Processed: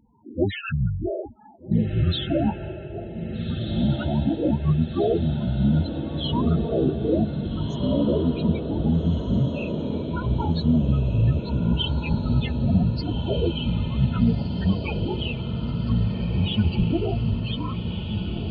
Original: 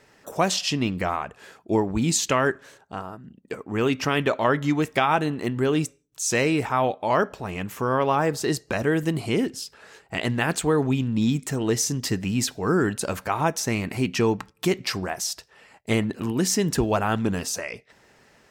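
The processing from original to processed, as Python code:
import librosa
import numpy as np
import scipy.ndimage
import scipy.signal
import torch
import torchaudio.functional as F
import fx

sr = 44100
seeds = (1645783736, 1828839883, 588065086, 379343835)

y = fx.pitch_bins(x, sr, semitones=-11.5)
y = fx.spec_topn(y, sr, count=8)
y = fx.echo_diffused(y, sr, ms=1658, feedback_pct=68, wet_db=-6.0)
y = F.gain(torch.from_numpy(y), 2.5).numpy()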